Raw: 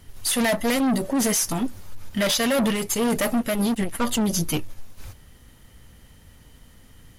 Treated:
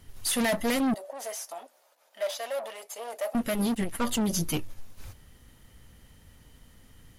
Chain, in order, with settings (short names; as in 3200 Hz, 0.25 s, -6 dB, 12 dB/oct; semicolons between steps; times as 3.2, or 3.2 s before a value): 0.94–3.35 ladder high-pass 560 Hz, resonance 65%; gain -4.5 dB